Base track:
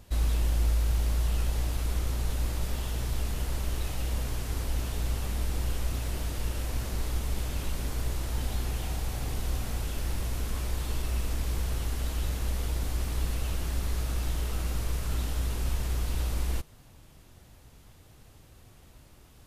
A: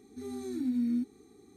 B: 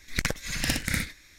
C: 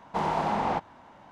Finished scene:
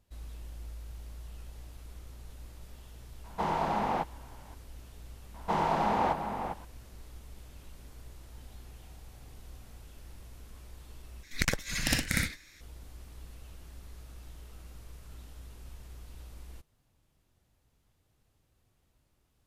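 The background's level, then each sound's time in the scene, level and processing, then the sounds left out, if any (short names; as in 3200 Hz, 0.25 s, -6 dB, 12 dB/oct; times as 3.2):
base track -18 dB
3.24 add C -3 dB
5.34 add C -1 dB + outdoor echo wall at 69 m, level -7 dB
11.23 replace with B -1.5 dB
not used: A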